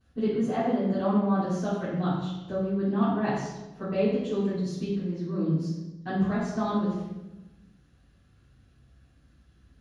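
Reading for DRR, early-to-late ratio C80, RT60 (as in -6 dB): -19.0 dB, 3.0 dB, 1.1 s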